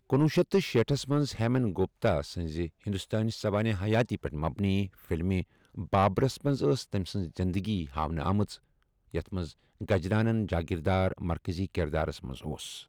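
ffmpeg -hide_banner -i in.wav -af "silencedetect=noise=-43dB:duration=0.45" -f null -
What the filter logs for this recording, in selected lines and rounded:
silence_start: 8.55
silence_end: 9.12 | silence_duration: 0.56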